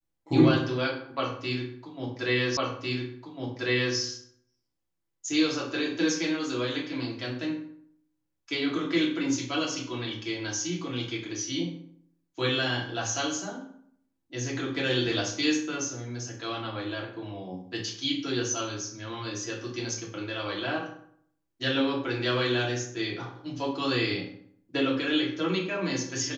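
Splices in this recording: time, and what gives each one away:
2.57 s: repeat of the last 1.4 s

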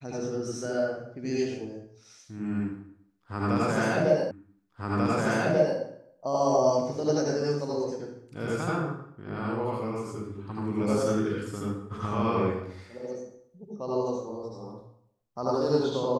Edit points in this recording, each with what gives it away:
4.31 s: repeat of the last 1.49 s

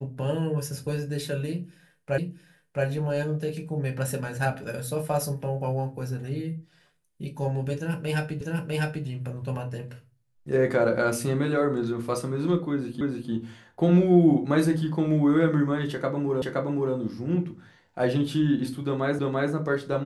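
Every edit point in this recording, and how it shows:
2.18 s: repeat of the last 0.67 s
8.41 s: repeat of the last 0.65 s
13.01 s: repeat of the last 0.3 s
16.42 s: repeat of the last 0.52 s
19.19 s: repeat of the last 0.34 s

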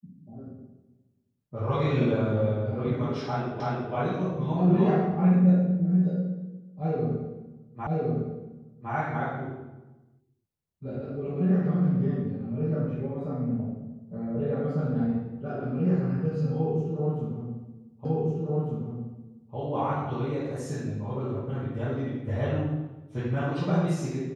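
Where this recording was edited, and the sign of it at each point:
3.60 s: repeat of the last 0.33 s
7.87 s: repeat of the last 1.06 s
18.05 s: repeat of the last 1.5 s

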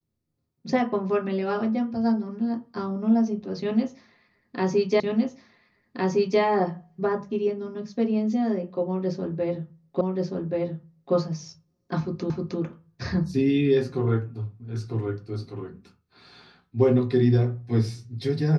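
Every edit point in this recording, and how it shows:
5.00 s: repeat of the last 1.41 s
10.01 s: repeat of the last 1.13 s
12.30 s: repeat of the last 0.31 s

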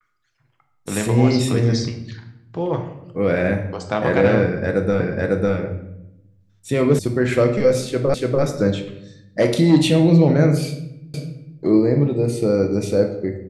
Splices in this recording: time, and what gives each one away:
5.00 s: repeat of the last 0.55 s
6.99 s: sound stops dead
8.14 s: repeat of the last 0.29 s
11.14 s: repeat of the last 0.45 s

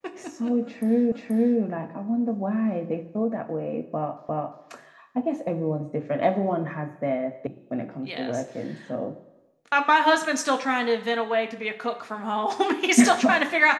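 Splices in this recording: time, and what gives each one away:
1.12 s: repeat of the last 0.48 s
4.29 s: repeat of the last 0.35 s
7.47 s: sound stops dead

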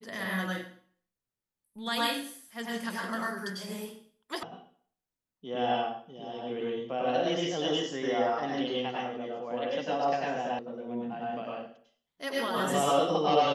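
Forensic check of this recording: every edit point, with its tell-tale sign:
4.43 s: sound stops dead
10.59 s: sound stops dead

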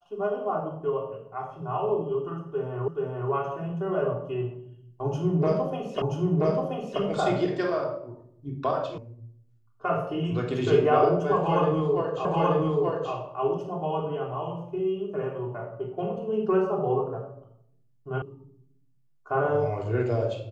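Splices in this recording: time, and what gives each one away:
2.88 s: repeat of the last 0.43 s
6.02 s: repeat of the last 0.98 s
8.98 s: sound stops dead
12.25 s: repeat of the last 0.88 s
18.22 s: sound stops dead

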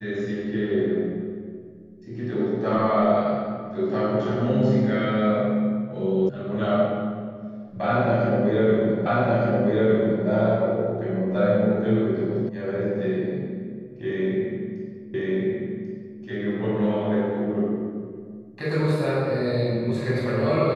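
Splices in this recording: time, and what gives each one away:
6.29 s: sound stops dead
9.06 s: repeat of the last 1.21 s
12.49 s: sound stops dead
15.14 s: repeat of the last 1.09 s

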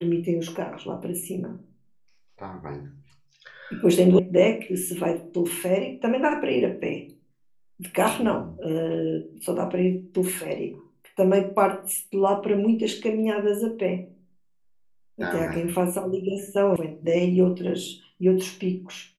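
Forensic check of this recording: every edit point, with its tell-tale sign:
4.19 s: sound stops dead
16.76 s: sound stops dead

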